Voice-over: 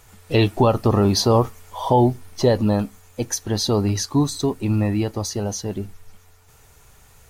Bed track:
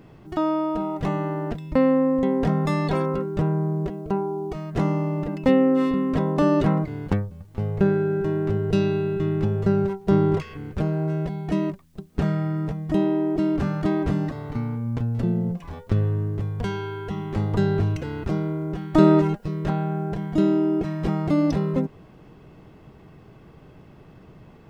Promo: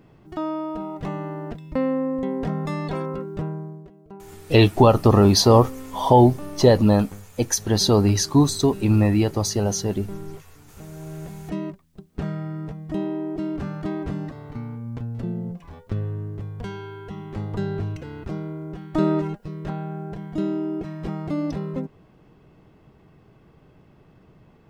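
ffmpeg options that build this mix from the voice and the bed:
-filter_complex "[0:a]adelay=4200,volume=1.33[s0];[1:a]volume=2.37,afade=t=out:st=3.34:d=0.5:silence=0.223872,afade=t=in:st=10.84:d=0.7:silence=0.251189[s1];[s0][s1]amix=inputs=2:normalize=0"

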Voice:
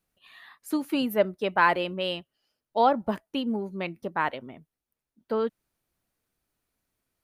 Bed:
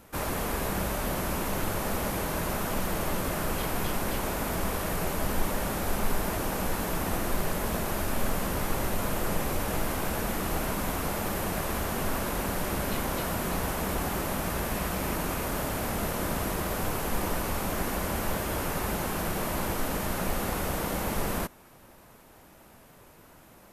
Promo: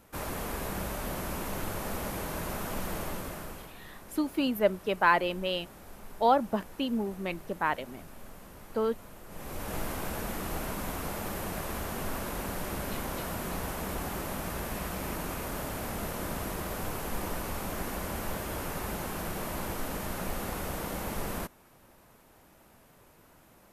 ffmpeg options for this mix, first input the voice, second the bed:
-filter_complex "[0:a]adelay=3450,volume=0.794[s0];[1:a]volume=2.99,afade=t=out:st=2.96:d=0.78:silence=0.188365,afade=t=in:st=9.28:d=0.5:silence=0.188365[s1];[s0][s1]amix=inputs=2:normalize=0"

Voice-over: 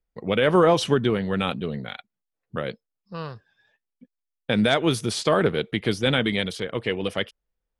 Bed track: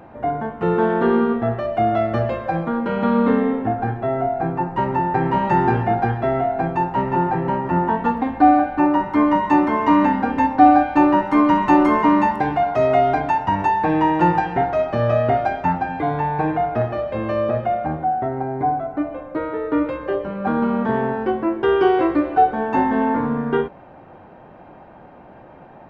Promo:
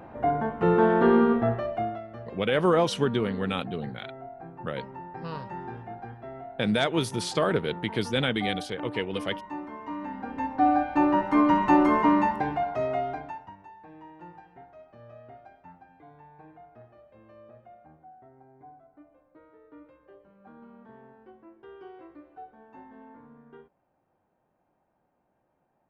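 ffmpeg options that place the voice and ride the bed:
-filter_complex "[0:a]adelay=2100,volume=0.596[s0];[1:a]volume=4.47,afade=t=out:st=1.37:d=0.64:silence=0.11885,afade=t=in:st=10.01:d=1.4:silence=0.16788,afade=t=out:st=12.06:d=1.5:silence=0.0562341[s1];[s0][s1]amix=inputs=2:normalize=0"

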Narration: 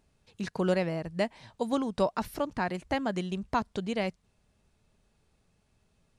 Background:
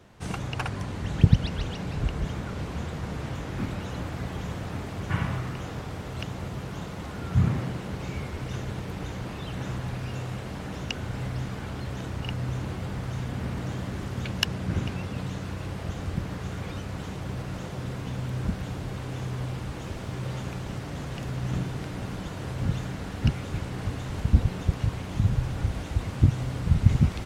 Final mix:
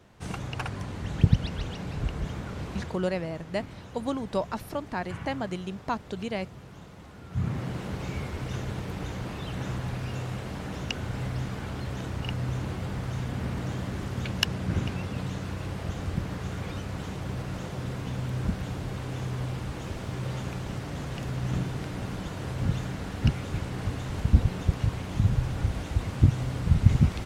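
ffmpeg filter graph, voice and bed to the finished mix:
-filter_complex "[0:a]adelay=2350,volume=0.841[s0];[1:a]volume=2.66,afade=t=out:st=2.79:d=0.24:silence=0.375837,afade=t=in:st=7.29:d=0.52:silence=0.281838[s1];[s0][s1]amix=inputs=2:normalize=0"

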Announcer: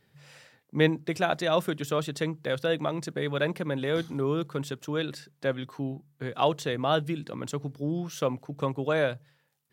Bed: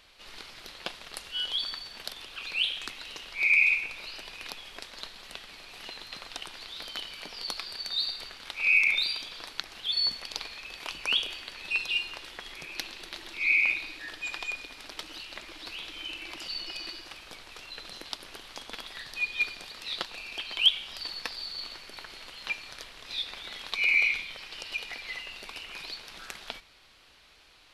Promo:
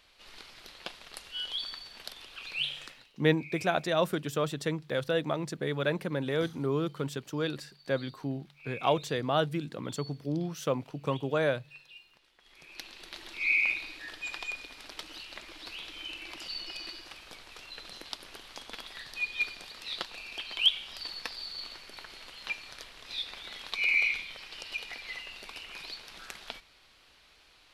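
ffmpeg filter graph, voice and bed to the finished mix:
-filter_complex "[0:a]adelay=2450,volume=0.794[s0];[1:a]volume=6.31,afade=t=out:st=2.67:d=0.44:silence=0.11885,afade=t=in:st=12.38:d=0.88:silence=0.0944061[s1];[s0][s1]amix=inputs=2:normalize=0"

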